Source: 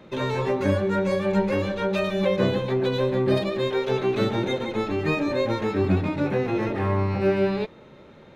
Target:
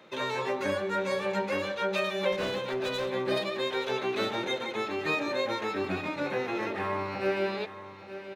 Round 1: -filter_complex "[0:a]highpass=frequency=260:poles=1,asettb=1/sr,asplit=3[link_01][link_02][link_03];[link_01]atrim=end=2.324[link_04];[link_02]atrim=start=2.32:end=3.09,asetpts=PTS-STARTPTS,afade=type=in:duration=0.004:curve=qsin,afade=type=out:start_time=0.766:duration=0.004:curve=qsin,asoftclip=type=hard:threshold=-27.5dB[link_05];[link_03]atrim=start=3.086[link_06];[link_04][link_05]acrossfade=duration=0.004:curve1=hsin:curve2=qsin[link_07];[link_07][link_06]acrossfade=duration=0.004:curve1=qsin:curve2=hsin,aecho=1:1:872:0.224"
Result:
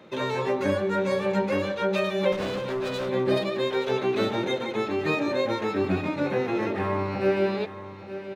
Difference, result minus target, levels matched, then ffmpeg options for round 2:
250 Hz band +3.0 dB
-filter_complex "[0:a]highpass=frequency=870:poles=1,asettb=1/sr,asplit=3[link_01][link_02][link_03];[link_01]atrim=end=2.324[link_04];[link_02]atrim=start=2.32:end=3.09,asetpts=PTS-STARTPTS,afade=type=in:duration=0.004:curve=qsin,afade=type=out:start_time=0.766:duration=0.004:curve=qsin,asoftclip=type=hard:threshold=-27.5dB[link_05];[link_03]atrim=start=3.086[link_06];[link_04][link_05]acrossfade=duration=0.004:curve1=hsin:curve2=qsin[link_07];[link_07][link_06]acrossfade=duration=0.004:curve1=qsin:curve2=hsin,aecho=1:1:872:0.224"

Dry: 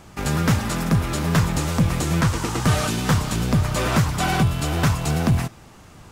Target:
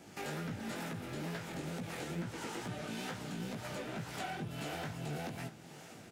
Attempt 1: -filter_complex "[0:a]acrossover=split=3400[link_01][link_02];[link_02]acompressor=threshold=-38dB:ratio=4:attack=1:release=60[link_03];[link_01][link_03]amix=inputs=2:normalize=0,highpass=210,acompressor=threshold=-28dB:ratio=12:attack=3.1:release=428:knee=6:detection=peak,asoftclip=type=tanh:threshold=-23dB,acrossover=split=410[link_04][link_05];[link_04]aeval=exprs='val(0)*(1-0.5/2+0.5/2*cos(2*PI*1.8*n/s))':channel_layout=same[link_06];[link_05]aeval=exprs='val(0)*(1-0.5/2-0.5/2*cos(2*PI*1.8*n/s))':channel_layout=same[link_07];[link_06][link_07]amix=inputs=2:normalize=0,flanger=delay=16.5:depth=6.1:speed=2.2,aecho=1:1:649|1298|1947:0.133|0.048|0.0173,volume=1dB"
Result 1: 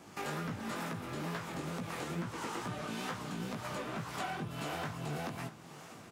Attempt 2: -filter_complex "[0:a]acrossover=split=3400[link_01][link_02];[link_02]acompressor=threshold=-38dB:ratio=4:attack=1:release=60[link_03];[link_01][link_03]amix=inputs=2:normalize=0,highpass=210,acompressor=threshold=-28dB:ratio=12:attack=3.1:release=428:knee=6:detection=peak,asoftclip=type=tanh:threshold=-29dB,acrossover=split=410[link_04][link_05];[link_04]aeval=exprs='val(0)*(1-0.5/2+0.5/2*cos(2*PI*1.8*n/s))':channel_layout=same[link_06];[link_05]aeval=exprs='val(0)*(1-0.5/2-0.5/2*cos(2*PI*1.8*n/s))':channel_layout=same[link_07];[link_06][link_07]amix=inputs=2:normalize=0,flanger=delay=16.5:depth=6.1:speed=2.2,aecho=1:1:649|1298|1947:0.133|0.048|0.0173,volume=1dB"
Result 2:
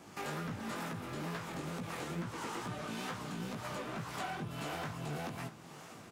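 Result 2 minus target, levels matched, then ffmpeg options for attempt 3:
1,000 Hz band +2.5 dB
-filter_complex "[0:a]acrossover=split=3400[link_01][link_02];[link_02]acompressor=threshold=-38dB:ratio=4:attack=1:release=60[link_03];[link_01][link_03]amix=inputs=2:normalize=0,highpass=210,acompressor=threshold=-28dB:ratio=12:attack=3.1:release=428:knee=6:detection=peak,equalizer=frequency=1100:width_type=o:width=0.3:gain=-13.5,asoftclip=type=tanh:threshold=-29dB,acrossover=split=410[link_04][link_05];[link_04]aeval=exprs='val(0)*(1-0.5/2+0.5/2*cos(2*PI*1.8*n/s))':channel_layout=same[link_06];[link_05]aeval=exprs='val(0)*(1-0.5/2-0.5/2*cos(2*PI*1.8*n/s))':channel_layout=same[link_07];[link_06][link_07]amix=inputs=2:normalize=0,flanger=delay=16.5:depth=6.1:speed=2.2,aecho=1:1:649|1298|1947:0.133|0.048|0.0173,volume=1dB"

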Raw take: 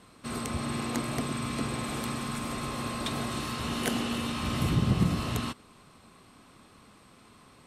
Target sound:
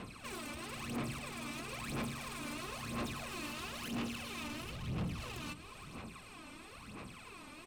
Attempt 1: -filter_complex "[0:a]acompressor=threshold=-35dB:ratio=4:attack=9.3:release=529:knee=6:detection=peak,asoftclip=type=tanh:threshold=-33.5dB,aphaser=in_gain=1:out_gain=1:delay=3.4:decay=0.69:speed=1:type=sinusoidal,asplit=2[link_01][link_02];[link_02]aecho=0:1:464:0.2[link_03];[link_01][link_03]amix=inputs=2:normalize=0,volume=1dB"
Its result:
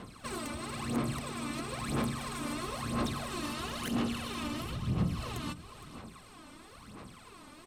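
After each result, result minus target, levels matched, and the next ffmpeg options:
soft clipping: distortion −10 dB; 2,000 Hz band −5.0 dB
-filter_complex "[0:a]acompressor=threshold=-35dB:ratio=4:attack=9.3:release=529:knee=6:detection=peak,asoftclip=type=tanh:threshold=-45dB,aphaser=in_gain=1:out_gain=1:delay=3.4:decay=0.69:speed=1:type=sinusoidal,asplit=2[link_01][link_02];[link_02]aecho=0:1:464:0.2[link_03];[link_01][link_03]amix=inputs=2:normalize=0,volume=1dB"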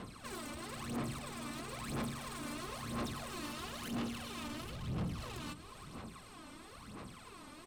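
2,000 Hz band −2.5 dB
-filter_complex "[0:a]acompressor=threshold=-35dB:ratio=4:attack=9.3:release=529:knee=6:detection=peak,equalizer=frequency=2500:width=4.8:gain=9.5,asoftclip=type=tanh:threshold=-45dB,aphaser=in_gain=1:out_gain=1:delay=3.4:decay=0.69:speed=1:type=sinusoidal,asplit=2[link_01][link_02];[link_02]aecho=0:1:464:0.2[link_03];[link_01][link_03]amix=inputs=2:normalize=0,volume=1dB"

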